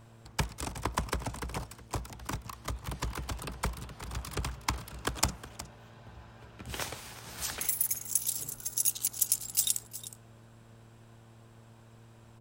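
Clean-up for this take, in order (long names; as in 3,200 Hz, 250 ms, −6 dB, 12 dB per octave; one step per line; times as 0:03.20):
hum removal 113.9 Hz, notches 6
echo removal 365 ms −15 dB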